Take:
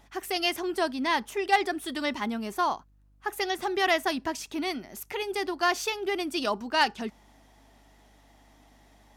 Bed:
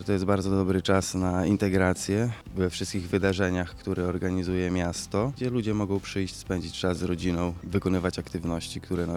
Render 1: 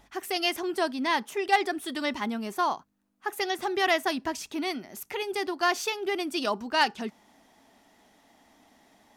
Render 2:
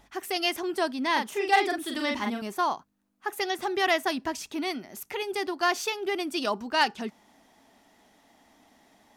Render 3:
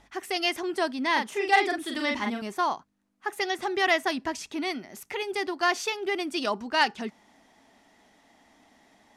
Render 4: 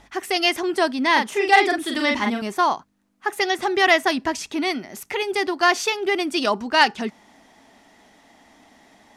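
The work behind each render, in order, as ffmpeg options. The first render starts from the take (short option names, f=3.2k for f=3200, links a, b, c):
-af "bandreject=f=50:t=h:w=4,bandreject=f=100:t=h:w=4,bandreject=f=150:t=h:w=4"
-filter_complex "[0:a]asettb=1/sr,asplit=3[a][b][c];[a]atrim=end=1.124[d];[b]atrim=start=1.12:end=2.42,asetpts=PTS-STARTPTS,afade=t=in:d=0.004:c=qsin,afade=t=out:st=1.296:d=0.004:c=qsin,asplit=2[e][f];[f]adelay=42,volume=-3.5dB[g];[e][g]amix=inputs=2:normalize=0,atrim=end_sample=57330[h];[c]atrim=start=2.416[i];[d][h]acrossfade=d=0.004:c1=hsin:c2=qsin[j];[j][i]acrossfade=d=0.004:c1=qsin:c2=hsin"
-af "lowpass=10k,equalizer=f=2k:t=o:w=0.42:g=3"
-af "volume=7dB,alimiter=limit=-3dB:level=0:latency=1"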